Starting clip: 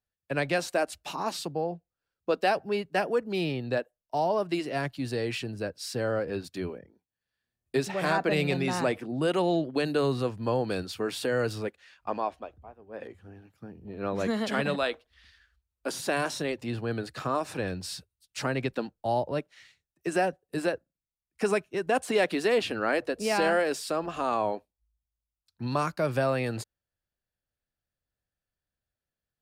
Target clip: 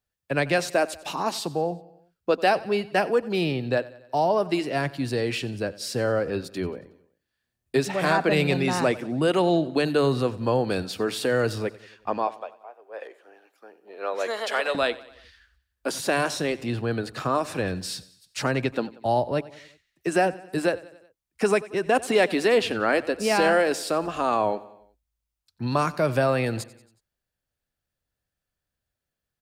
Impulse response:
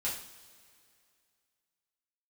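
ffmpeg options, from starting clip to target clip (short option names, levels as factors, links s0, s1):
-filter_complex "[0:a]asettb=1/sr,asplit=3[s0][s1][s2];[s0]atrim=end=12.274[s3];[s1]atrim=start=12.27:end=14.75,asetpts=PTS-STARTPTS,afade=t=in:d=0.004:c=qsin,afade=t=out:st=2.476:d=0.004:c=qsin,highpass=f=450:w=0.5412,highpass=f=450:w=1.3066[s4];[s2]atrim=start=14.746[s5];[s3][s4]acrossfade=d=0.004:c1=hsin:c2=qsin[s6];[s6][s5]acrossfade=d=0.004:c1=qsin:c2=hsin,aecho=1:1:92|184|276|368:0.106|0.0583|0.032|0.0176,volume=1.68"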